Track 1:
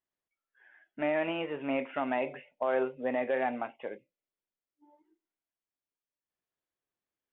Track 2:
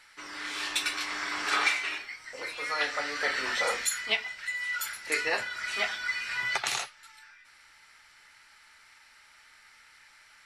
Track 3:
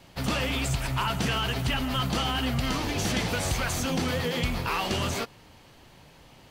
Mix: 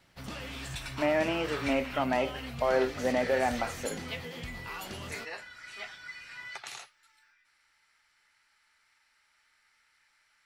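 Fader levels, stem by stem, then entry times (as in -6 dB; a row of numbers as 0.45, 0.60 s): +2.5, -12.5, -13.5 dB; 0.00, 0.00, 0.00 s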